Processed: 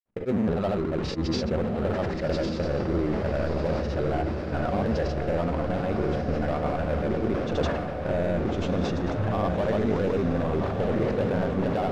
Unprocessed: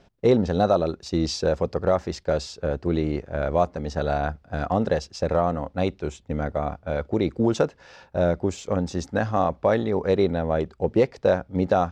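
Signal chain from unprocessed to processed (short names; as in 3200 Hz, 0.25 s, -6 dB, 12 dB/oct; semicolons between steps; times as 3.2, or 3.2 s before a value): zero-crossing step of -35 dBFS; LPF 2100 Hz 12 dB/oct; gate -37 dBFS, range -49 dB; bell 210 Hz +3 dB 1.5 oct; limiter -17 dBFS, peak gain reduction 10 dB; in parallel at -6.5 dB: wavefolder -30 dBFS; on the sum: grains; diffused feedback echo 1.233 s, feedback 58%, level -5 dB; on a send at -21 dB: reverb RT60 0.70 s, pre-delay 8 ms; on the sum: sustainer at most 31 dB/s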